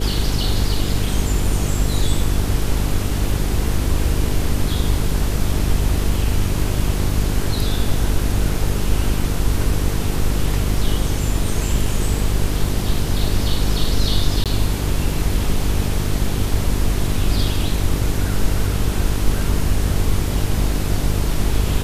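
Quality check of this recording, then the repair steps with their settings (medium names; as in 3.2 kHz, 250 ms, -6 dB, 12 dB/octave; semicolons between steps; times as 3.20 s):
buzz 50 Hz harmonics 9 -22 dBFS
14.44–14.46 s: dropout 17 ms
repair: de-hum 50 Hz, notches 9; interpolate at 14.44 s, 17 ms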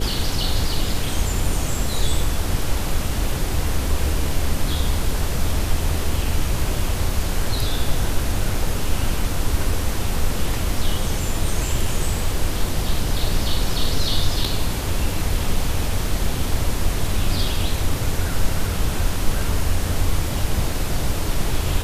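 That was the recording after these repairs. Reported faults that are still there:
nothing left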